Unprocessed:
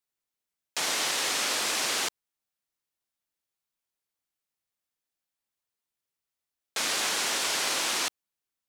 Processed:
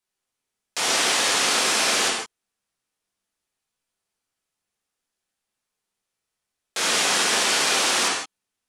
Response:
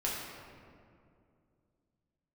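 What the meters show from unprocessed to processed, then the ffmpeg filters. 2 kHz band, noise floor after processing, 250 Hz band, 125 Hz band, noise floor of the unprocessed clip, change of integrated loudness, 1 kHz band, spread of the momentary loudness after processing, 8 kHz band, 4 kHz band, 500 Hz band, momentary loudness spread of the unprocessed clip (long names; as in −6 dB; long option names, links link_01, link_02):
+8.0 dB, −84 dBFS, +9.0 dB, +9.0 dB, below −85 dBFS, +7.0 dB, +8.5 dB, 12 LU, +7.0 dB, +7.0 dB, +9.0 dB, 6 LU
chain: -filter_complex "[1:a]atrim=start_sample=2205,atrim=end_sample=3969,asetrate=22491,aresample=44100[link_01];[0:a][link_01]afir=irnorm=-1:irlink=0"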